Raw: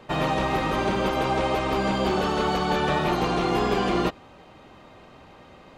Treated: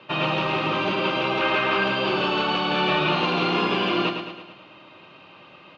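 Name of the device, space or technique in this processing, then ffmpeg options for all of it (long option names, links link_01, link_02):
kitchen radio: -filter_complex "[0:a]asettb=1/sr,asplit=3[link_01][link_02][link_03];[link_01]atrim=end=2.734[link_04];[link_02]atrim=start=2.73:end=3.65,asetpts=PTS-STARTPTS,afade=type=in:duration=0.004:curve=qsin,afade=type=out:start_time=0.916:duration=0.004:curve=qsin,asplit=2[link_05][link_06];[link_06]adelay=44,volume=-5dB[link_07];[link_05][link_07]amix=inputs=2:normalize=0,atrim=end_sample=40572[link_08];[link_03]atrim=start=3.646[link_09];[link_04][link_08]acrossfade=duration=0.004:curve1=hsin:curve2=qsin[link_10];[link_10][link_09]acrossfade=duration=0.004:curve1=qsin:curve2=hsin,highpass=89,asettb=1/sr,asplit=3[link_11][link_12][link_13];[link_11]atrim=end=1.414[link_14];[link_12]atrim=start=1.41:end=1.84,asetpts=PTS-STARTPTS,afade=type=in:duration=0.004:curve=qsin,afade=type=out:start_time=0.426:duration=0.004:curve=qsin,equalizer=frequency=1600:width=2:gain=9[link_15];[link_13]atrim=start=1.836[link_16];[link_14][link_15]acrossfade=duration=0.004:curve1=hsin:curve2=qsin[link_17];[link_17][link_16]acrossfade=duration=0.004:curve1=qsin:curve2=hsin,highpass=170,equalizer=frequency=240:width_type=q:width=4:gain=-10,equalizer=frequency=450:width_type=q:width=4:gain=-8,equalizer=frequency=750:width_type=q:width=4:gain=-9,equalizer=frequency=1900:width_type=q:width=4:gain=-6,equalizer=frequency=2700:width_type=q:width=4:gain=9,lowpass=frequency=4400:width=0.5412,lowpass=frequency=4400:width=1.3066,aecho=1:1:109|218|327|436|545|654:0.447|0.237|0.125|0.0665|0.0352|0.0187,volume=3dB"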